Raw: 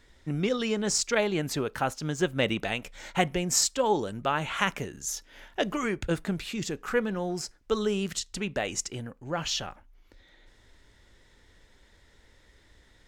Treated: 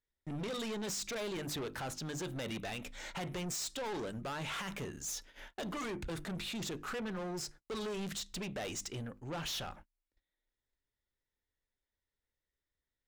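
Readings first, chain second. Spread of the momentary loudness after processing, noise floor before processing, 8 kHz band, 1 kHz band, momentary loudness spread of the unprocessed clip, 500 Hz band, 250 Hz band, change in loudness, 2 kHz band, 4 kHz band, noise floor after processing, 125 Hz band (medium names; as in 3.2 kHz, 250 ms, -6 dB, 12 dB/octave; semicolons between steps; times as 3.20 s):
5 LU, -60 dBFS, -11.0 dB, -12.0 dB, 9 LU, -12.0 dB, -10.0 dB, -10.5 dB, -11.0 dB, -8.5 dB, under -85 dBFS, -9.0 dB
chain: hum notches 50/100/150/200/250/300/350 Hz; gate -49 dBFS, range -32 dB; dynamic bell 3.7 kHz, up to +7 dB, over -53 dBFS, Q 6.4; peak limiter -19.5 dBFS, peak gain reduction 11.5 dB; saturation -35.5 dBFS, distortion -6 dB; trim -1 dB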